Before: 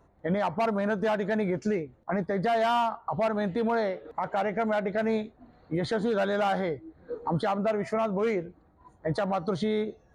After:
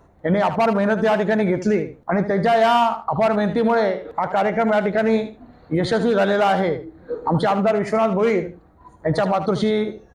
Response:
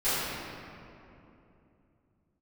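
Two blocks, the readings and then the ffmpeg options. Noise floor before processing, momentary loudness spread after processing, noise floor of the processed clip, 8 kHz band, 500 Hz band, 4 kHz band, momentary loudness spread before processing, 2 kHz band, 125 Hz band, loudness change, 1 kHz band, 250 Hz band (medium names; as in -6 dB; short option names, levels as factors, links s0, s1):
-61 dBFS, 7 LU, -52 dBFS, no reading, +9.0 dB, +9.0 dB, 7 LU, +9.0 dB, +9.0 dB, +9.0 dB, +9.0 dB, +9.0 dB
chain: -af "aecho=1:1:76|152:0.282|0.0507,volume=2.66"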